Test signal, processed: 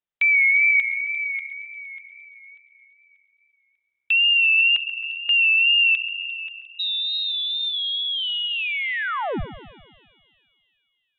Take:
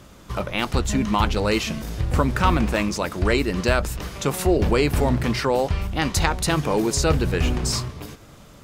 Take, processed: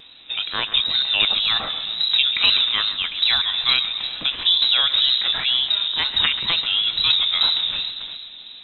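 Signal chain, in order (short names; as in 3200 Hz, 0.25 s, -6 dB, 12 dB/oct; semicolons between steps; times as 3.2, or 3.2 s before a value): inverted band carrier 3800 Hz; wow and flutter 59 cents; split-band echo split 3000 Hz, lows 0.134 s, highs 0.351 s, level -13 dB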